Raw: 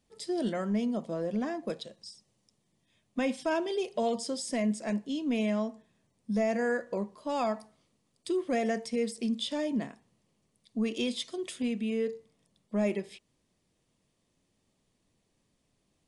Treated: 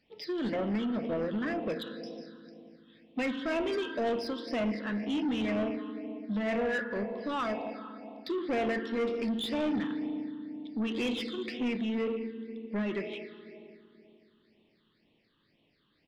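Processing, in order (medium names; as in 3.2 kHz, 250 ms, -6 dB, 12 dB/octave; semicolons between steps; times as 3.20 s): on a send at -8 dB: reverberation RT60 2.7 s, pre-delay 3 ms; on the sum: phase shifter stages 8, 2 Hz, lowest notch 660–1500 Hz; resampled via 11.025 kHz; overdrive pedal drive 22 dB, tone 3.9 kHz, clips at -18.5 dBFS; dynamic bell 4.3 kHz, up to -5 dB, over -49 dBFS, Q 1.6; trim -4 dB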